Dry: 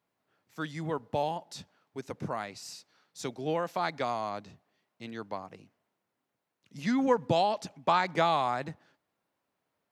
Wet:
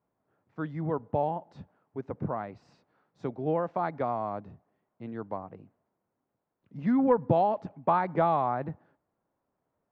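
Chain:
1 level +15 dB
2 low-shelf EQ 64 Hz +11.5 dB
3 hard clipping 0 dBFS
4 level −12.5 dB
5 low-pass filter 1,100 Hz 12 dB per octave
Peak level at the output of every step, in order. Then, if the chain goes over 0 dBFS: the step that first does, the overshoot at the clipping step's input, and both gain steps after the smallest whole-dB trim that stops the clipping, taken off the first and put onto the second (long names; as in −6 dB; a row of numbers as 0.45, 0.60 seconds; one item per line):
+3.0, +3.0, 0.0, −12.5, −12.0 dBFS
step 1, 3.0 dB
step 1 +12 dB, step 4 −9.5 dB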